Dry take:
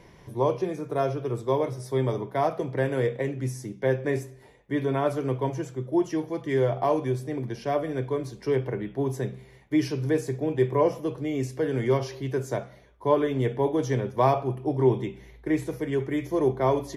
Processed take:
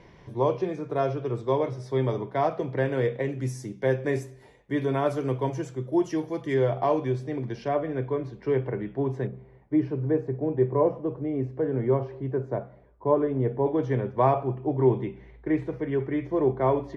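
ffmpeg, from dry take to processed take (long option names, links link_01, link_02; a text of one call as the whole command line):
ffmpeg -i in.wav -af "asetnsamples=nb_out_samples=441:pad=0,asendcmd='3.29 lowpass f 9700;6.54 lowpass f 4700;7.68 lowpass f 2400;9.27 lowpass f 1100;13.66 lowpass f 2100',lowpass=4700" out.wav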